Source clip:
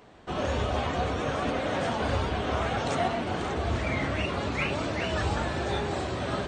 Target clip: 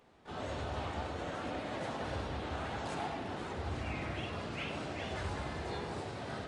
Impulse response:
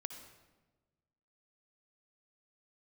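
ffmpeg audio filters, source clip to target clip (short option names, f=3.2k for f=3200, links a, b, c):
-filter_complex "[0:a]asplit=2[a][b];[b]asetrate=52444,aresample=44100,atempo=0.840896,volume=-1dB[c];[a][c]amix=inputs=2:normalize=0[d];[1:a]atrim=start_sample=2205,asetrate=52920,aresample=44100[e];[d][e]afir=irnorm=-1:irlink=0,volume=-9dB"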